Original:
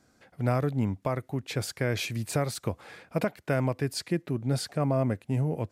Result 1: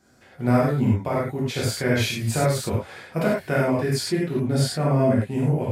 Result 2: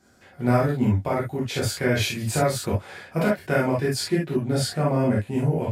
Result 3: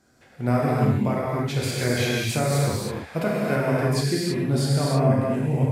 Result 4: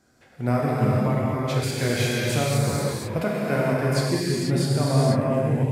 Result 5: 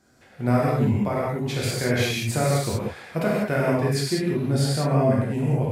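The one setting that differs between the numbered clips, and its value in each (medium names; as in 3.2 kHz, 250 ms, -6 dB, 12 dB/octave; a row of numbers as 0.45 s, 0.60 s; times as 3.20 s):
gated-style reverb, gate: 130 ms, 90 ms, 350 ms, 520 ms, 220 ms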